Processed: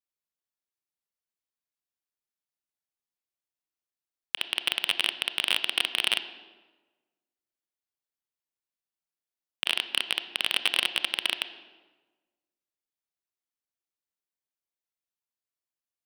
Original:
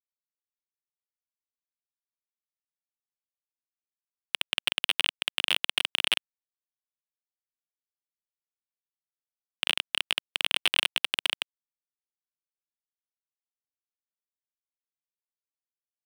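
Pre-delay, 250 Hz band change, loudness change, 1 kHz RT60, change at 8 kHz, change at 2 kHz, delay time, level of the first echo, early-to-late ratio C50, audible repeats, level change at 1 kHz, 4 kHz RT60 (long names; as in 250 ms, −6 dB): 25 ms, +1.5 dB, 0.0 dB, 1.2 s, 0.0 dB, 0.0 dB, no echo audible, no echo audible, 12.0 dB, no echo audible, +0.5 dB, 0.90 s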